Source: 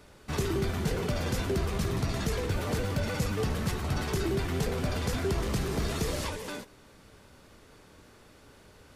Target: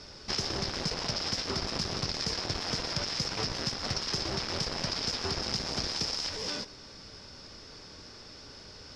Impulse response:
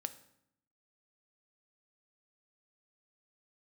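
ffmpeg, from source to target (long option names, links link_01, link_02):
-af "aeval=exprs='0.119*(cos(1*acos(clip(val(0)/0.119,-1,1)))-cos(1*PI/2))+0.0422*(cos(7*acos(clip(val(0)/0.119,-1,1)))-cos(7*PI/2))':channel_layout=same,lowpass=frequency=5200:width_type=q:width=11,acompressor=threshold=-29dB:ratio=6"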